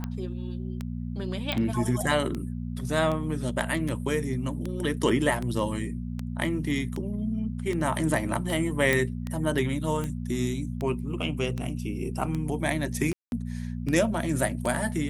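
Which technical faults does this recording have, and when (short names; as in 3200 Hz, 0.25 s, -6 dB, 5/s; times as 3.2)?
hum 60 Hz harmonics 4 -33 dBFS
tick 78 rpm -19 dBFS
1.52 pop -14 dBFS
8.93 pop
13.13–13.32 gap 0.191 s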